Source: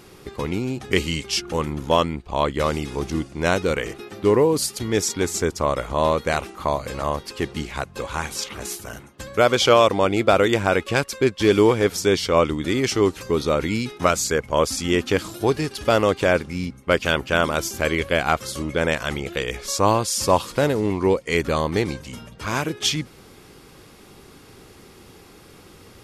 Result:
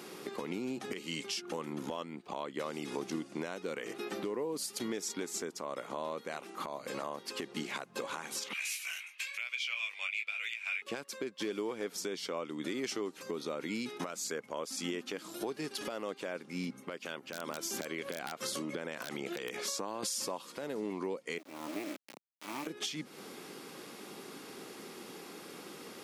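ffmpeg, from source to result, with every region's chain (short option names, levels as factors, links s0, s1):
-filter_complex "[0:a]asettb=1/sr,asplit=3[s0][s1][s2];[s0]atrim=end=8.534[s3];[s1]atrim=start=8.53:end=10.82,asetpts=PTS-STARTPTS,afade=t=in:d=0.004:c=qsin,afade=t=out:st=2.286:d=0.004:c=qsin,highpass=f=2400:t=q:w=9.5,flanger=delay=16:depth=6.3:speed=1[s4];[s2]atrim=start=10.816[s5];[s3][s4]acrossfade=d=0.004:c1=hsin:c2=qsin[s6];[s6][s5]acrossfade=d=0.004:c1=qsin:c2=hsin,asettb=1/sr,asplit=3[s7][s8][s9];[s7]atrim=end=17.194[s10];[s8]atrim=start=17.19:end=20.03,asetpts=PTS-STARTPTS,afade=t=in:d=0.004:c=qsin,afade=t=out:st=2.836:d=0.004:c=qsin,highshelf=f=7600:g=-2.5,acompressor=threshold=0.0355:ratio=12:attack=3.2:release=140:knee=1:detection=peak,aeval=exprs='(mod(11.2*val(0)+1,2)-1)/11.2':c=same[s11];[s9]atrim=start=20.026[s12];[s10][s11]acrossfade=d=0.004:c1=hsin:c2=qsin[s13];[s13][s12]acrossfade=d=0.004:c1=qsin:c2=hsin,asettb=1/sr,asplit=3[s14][s15][s16];[s14]atrim=end=21.384[s17];[s15]atrim=start=21.38:end=22.67,asetpts=PTS-STARTPTS,afade=t=in:d=0.004:c=qsin,afade=t=out:st=1.286:d=0.004:c=qsin,asplit=3[s18][s19][s20];[s18]bandpass=f=300:t=q:w=8,volume=1[s21];[s19]bandpass=f=870:t=q:w=8,volume=0.501[s22];[s20]bandpass=f=2240:t=q:w=8,volume=0.355[s23];[s21][s22][s23]amix=inputs=3:normalize=0,acrusher=bits=4:dc=4:mix=0:aa=0.000001[s24];[s16]atrim=start=22.666[s25];[s17][s24]acrossfade=d=0.004:c1=hsin:c2=qsin[s26];[s26][s25]acrossfade=d=0.004:c1=qsin:c2=hsin,highpass=f=190:w=0.5412,highpass=f=190:w=1.3066,acompressor=threshold=0.0224:ratio=10,alimiter=level_in=1.19:limit=0.0631:level=0:latency=1:release=116,volume=0.841"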